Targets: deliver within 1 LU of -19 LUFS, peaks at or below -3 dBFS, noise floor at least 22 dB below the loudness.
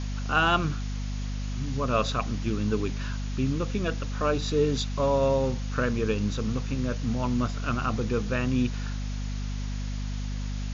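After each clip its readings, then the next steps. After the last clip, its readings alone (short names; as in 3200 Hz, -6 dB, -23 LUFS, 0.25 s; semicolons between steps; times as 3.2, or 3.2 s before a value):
hum 50 Hz; harmonics up to 250 Hz; hum level -29 dBFS; noise floor -31 dBFS; noise floor target -51 dBFS; loudness -28.5 LUFS; peak -10.5 dBFS; loudness target -19.0 LUFS
-> de-hum 50 Hz, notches 5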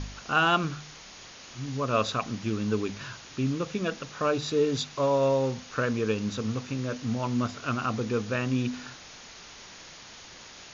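hum none; noise floor -47 dBFS; noise floor target -51 dBFS
-> denoiser 6 dB, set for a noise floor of -47 dBFS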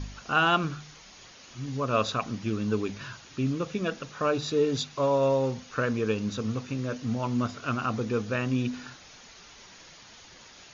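noise floor -51 dBFS; loudness -28.5 LUFS; peak -10.5 dBFS; loudness target -19.0 LUFS
-> gain +9.5 dB; limiter -3 dBFS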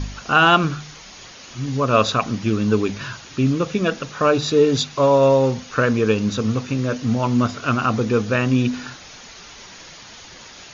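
loudness -19.0 LUFS; peak -3.0 dBFS; noise floor -41 dBFS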